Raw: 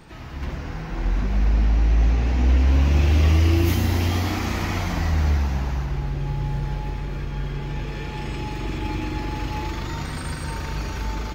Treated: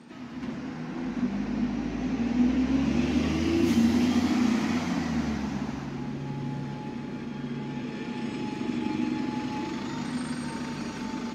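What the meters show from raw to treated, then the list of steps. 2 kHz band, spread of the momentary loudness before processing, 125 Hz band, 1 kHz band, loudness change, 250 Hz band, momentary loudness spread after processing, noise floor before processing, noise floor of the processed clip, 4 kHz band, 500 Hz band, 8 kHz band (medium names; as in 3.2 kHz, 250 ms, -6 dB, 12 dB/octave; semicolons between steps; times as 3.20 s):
-5.0 dB, 12 LU, -14.5 dB, -5.0 dB, -5.0 dB, +4.0 dB, 11 LU, -32 dBFS, -38 dBFS, -5.0 dB, -3.0 dB, -4.5 dB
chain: Chebyshev band-pass 200–8100 Hz, order 2; peaking EQ 240 Hz +14 dB 0.49 oct; on a send: echo that smears into a reverb 457 ms, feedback 48%, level -13.5 dB; on the sum: trim -4.5 dB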